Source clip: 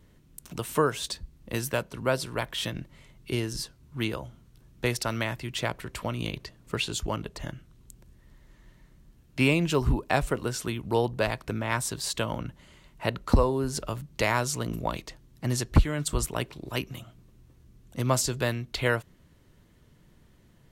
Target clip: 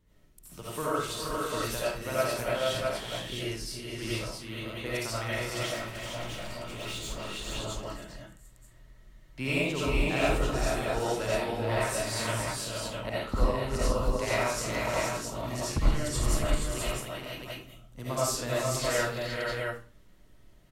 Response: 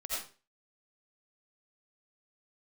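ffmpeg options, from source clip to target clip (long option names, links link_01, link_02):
-filter_complex "[0:a]aecho=1:1:53|308|422|468|660:0.473|0.211|0.447|0.596|0.668,asettb=1/sr,asplit=3[link_01][link_02][link_03];[link_01]atrim=end=5.654[link_04];[link_02]atrim=start=5.65:end=7.48,asetpts=PTS-STARTPTS,afade=type=in:duration=0.004:curve=qsin,afade=type=out:start_time=1.826:duration=0.004:curve=qsin,volume=29.5dB,asoftclip=hard,volume=-29.5dB[link_05];[link_03]atrim=start=7.476[link_06];[link_04][link_05]acrossfade=duration=0.004:curve1=hsin:curve2=qsin[link_07];[link_07][link_06]acrossfade=duration=0.004:curve1=qsin:curve2=hsin[link_08];[1:a]atrim=start_sample=2205[link_09];[link_08][link_09]afir=irnorm=-1:irlink=0,volume=-6.5dB"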